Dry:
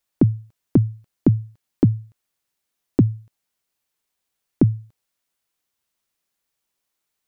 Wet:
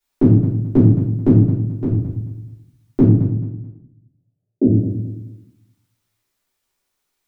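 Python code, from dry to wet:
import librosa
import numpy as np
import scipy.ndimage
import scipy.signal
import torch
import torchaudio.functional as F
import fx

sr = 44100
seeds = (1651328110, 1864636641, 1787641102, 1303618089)

p1 = fx.level_steps(x, sr, step_db=20, at=(1.4, 1.93))
p2 = fx.ellip_bandpass(p1, sr, low_hz=190.0, high_hz=620.0, order=3, stop_db=50, at=(3.14, 4.65), fade=0.02)
p3 = p2 + fx.echo_feedback(p2, sr, ms=217, feedback_pct=29, wet_db=-13, dry=0)
p4 = fx.room_shoebox(p3, sr, seeds[0], volume_m3=120.0, walls='mixed', distance_m=3.2)
y = p4 * 10.0 ** (-6.0 / 20.0)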